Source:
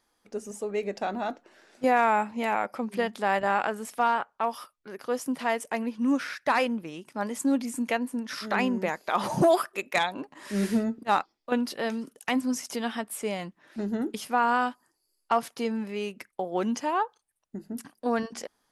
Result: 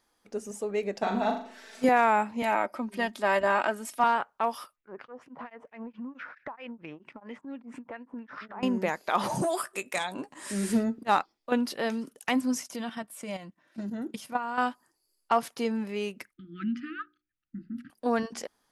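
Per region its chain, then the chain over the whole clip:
1.02–1.89 comb 4.5 ms, depth 76% + flutter echo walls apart 6.9 m, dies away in 0.46 s + mismatched tape noise reduction encoder only
2.42–4.04 comb 3.2 ms, depth 57% + three-band expander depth 40%
4.76–8.63 LFO low-pass sine 4.4 Hz 900–2700 Hz + compressor 10:1, threshold -35 dBFS + beating tremolo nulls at 4.7 Hz
9.35–10.73 bell 8400 Hz +13 dB 0.61 oct + compressor 2:1, threshold -30 dBFS + doubler 16 ms -11 dB
12.63–14.58 level quantiser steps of 11 dB + notch comb 420 Hz
16.33–17.9 brick-wall FIR band-stop 340–1200 Hz + air absorption 410 m + notches 60/120/180/240/300/360/420/480/540 Hz
whole clip: dry

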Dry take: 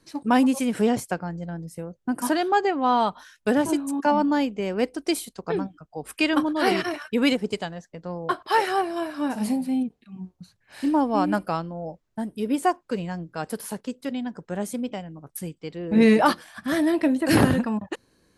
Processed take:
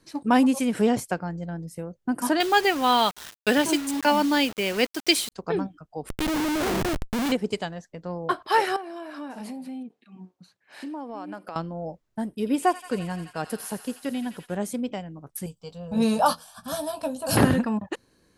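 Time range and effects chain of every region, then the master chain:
2.4–5.32 weighting filter D + requantised 6-bit, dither none
6.09–7.32 low shelf 160 Hz +6.5 dB + compressor 2:1, threshold -21 dBFS + Schmitt trigger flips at -26.5 dBFS
8.76–11.56 HPF 270 Hz + high shelf 6400 Hz -7.5 dB + compressor 4:1, threshold -34 dBFS
12.25–14.55 thin delay 86 ms, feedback 84%, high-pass 1700 Hz, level -10 dB + expander -45 dBFS
15.46–17.37 high shelf 6100 Hz +6.5 dB + fixed phaser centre 820 Hz, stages 4 + doubler 17 ms -9 dB
whole clip: dry

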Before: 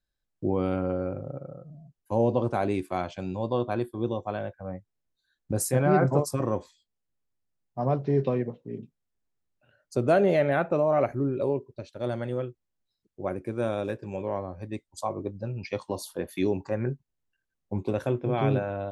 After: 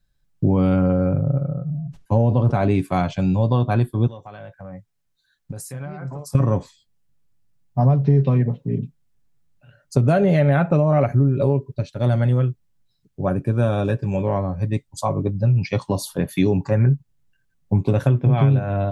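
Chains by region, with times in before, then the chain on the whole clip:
0.89–2.8 air absorption 63 m + sustainer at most 130 dB/s
4.07–6.35 low shelf 430 Hz -10.5 dB + compressor 5:1, threshold -43 dBFS
13.26–13.98 Butterworth band-stop 2100 Hz, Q 5 + high shelf 6600 Hz -4.5 dB
whole clip: resonant low shelf 240 Hz +8 dB, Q 1.5; comb 7.1 ms, depth 37%; compressor, threshold -21 dBFS; gain +8 dB

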